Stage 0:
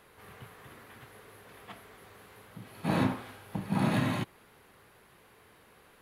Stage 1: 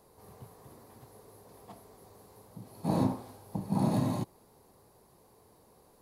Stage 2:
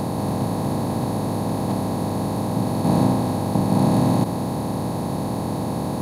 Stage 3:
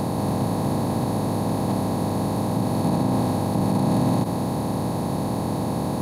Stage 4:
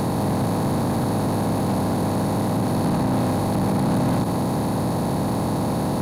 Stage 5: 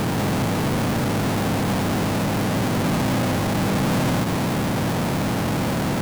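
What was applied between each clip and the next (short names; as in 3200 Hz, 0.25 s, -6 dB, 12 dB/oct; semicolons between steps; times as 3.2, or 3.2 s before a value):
band shelf 2100 Hz -15.5 dB
per-bin compression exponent 0.2; gain +6 dB
limiter -12.5 dBFS, peak gain reduction 6.5 dB
sample leveller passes 2; gain -3 dB
half-waves squared off; gain -3 dB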